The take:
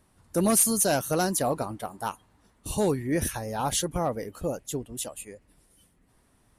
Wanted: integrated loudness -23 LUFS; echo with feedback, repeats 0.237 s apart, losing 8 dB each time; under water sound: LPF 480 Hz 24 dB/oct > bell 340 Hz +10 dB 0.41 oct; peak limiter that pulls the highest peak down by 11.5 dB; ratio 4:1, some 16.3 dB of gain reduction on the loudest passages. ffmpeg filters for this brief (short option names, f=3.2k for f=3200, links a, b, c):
-af "acompressor=threshold=-38dB:ratio=4,alimiter=level_in=11dB:limit=-24dB:level=0:latency=1,volume=-11dB,lowpass=f=480:w=0.5412,lowpass=f=480:w=1.3066,equalizer=f=340:t=o:w=0.41:g=10,aecho=1:1:237|474|711|948|1185:0.398|0.159|0.0637|0.0255|0.0102,volume=20.5dB"